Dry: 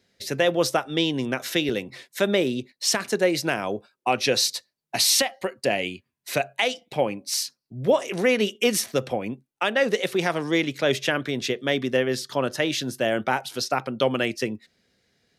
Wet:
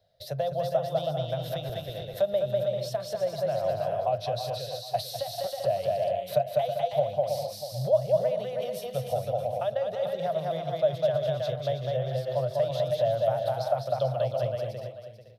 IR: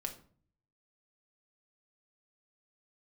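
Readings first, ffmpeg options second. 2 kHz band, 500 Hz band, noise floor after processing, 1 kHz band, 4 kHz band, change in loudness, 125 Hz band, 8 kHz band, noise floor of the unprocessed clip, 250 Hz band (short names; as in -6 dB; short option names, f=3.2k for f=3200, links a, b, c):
-20.0 dB, -1.0 dB, -42 dBFS, -2.5 dB, -13.5 dB, -4.5 dB, +1.5 dB, -19.5 dB, -80 dBFS, -15.5 dB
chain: -filter_complex "[0:a]asplit=2[a][b];[b]aecho=0:1:200|320|392|435.2|461.1:0.631|0.398|0.251|0.158|0.1[c];[a][c]amix=inputs=2:normalize=0,acrossover=split=190[d][e];[e]acompressor=threshold=-28dB:ratio=6[f];[d][f]amix=inputs=2:normalize=0,firequalizer=gain_entry='entry(130,0);entry(250,-28);entry(360,-22);entry(620,11);entry(890,-9);entry(2300,-21);entry(3600,-7);entry(6800,-21);entry(14000,-5)':delay=0.05:min_phase=1,asplit=2[g][h];[h]aecho=0:1:441:0.282[i];[g][i]amix=inputs=2:normalize=0,volume=2.5dB"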